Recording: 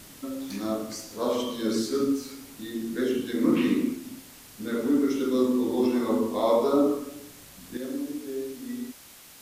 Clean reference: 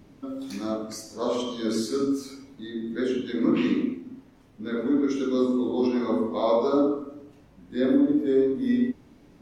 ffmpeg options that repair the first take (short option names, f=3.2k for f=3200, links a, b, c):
-af "afwtdn=0.004,asetnsamples=n=441:p=0,asendcmd='7.77 volume volume 12dB',volume=0dB"